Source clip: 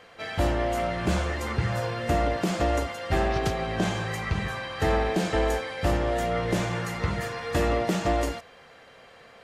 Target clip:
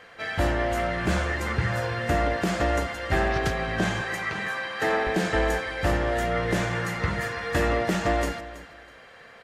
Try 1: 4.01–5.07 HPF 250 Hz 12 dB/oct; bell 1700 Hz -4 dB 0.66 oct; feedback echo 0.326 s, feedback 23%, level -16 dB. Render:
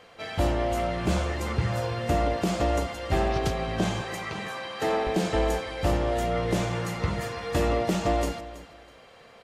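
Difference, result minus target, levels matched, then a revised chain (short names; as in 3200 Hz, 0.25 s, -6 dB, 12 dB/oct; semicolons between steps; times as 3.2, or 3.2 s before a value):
2000 Hz band -6.5 dB
4.01–5.07 HPF 250 Hz 12 dB/oct; bell 1700 Hz +6.5 dB 0.66 oct; feedback echo 0.326 s, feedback 23%, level -16 dB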